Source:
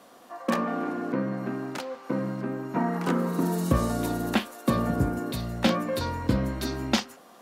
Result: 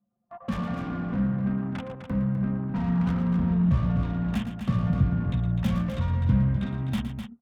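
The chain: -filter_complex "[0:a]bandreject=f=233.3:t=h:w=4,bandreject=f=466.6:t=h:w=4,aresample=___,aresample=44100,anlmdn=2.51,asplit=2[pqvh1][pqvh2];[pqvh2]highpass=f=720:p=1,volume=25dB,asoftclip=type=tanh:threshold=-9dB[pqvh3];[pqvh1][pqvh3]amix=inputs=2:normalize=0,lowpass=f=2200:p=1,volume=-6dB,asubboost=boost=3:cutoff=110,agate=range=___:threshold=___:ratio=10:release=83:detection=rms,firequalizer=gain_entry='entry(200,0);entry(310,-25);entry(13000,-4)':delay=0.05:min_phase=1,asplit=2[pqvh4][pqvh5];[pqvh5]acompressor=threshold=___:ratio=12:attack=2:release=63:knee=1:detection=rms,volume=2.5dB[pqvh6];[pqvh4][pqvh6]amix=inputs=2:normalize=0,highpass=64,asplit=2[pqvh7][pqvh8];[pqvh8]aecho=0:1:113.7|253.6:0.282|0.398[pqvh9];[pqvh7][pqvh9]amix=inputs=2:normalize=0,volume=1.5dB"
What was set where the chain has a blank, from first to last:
8000, -8dB, -39dB, -39dB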